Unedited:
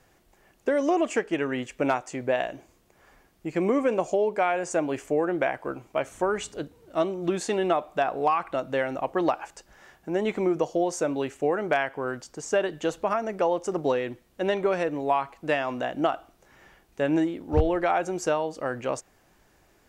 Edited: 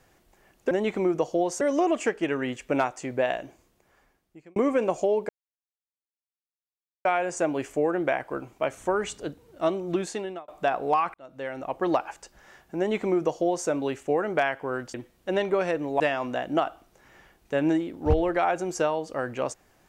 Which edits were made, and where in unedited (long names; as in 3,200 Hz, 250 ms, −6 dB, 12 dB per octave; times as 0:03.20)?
0:02.45–0:03.66: fade out
0:04.39: splice in silence 1.76 s
0:07.26–0:07.82: fade out
0:08.48–0:09.24: fade in
0:10.12–0:11.02: duplicate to 0:00.71
0:12.28–0:14.06: remove
0:15.12–0:15.47: remove